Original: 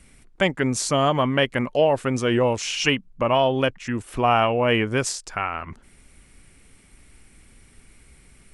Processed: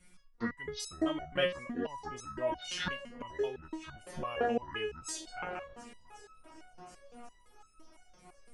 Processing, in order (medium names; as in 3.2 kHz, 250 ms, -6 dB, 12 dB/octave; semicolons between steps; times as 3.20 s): pitch shift switched off and on -9 st, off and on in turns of 132 ms; multi-head delay 364 ms, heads second and third, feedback 63%, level -22 dB; resonator arpeggio 5.9 Hz 180–1300 Hz; trim +3 dB